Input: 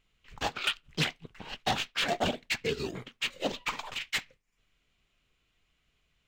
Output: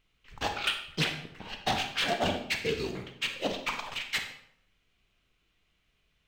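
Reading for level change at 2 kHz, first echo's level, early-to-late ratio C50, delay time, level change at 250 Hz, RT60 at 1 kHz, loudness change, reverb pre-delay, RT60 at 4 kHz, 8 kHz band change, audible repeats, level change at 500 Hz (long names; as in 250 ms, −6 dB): +1.0 dB, no echo audible, 7.5 dB, no echo audible, +1.0 dB, 0.65 s, +0.5 dB, 30 ms, 0.55 s, −0.5 dB, no echo audible, +1.0 dB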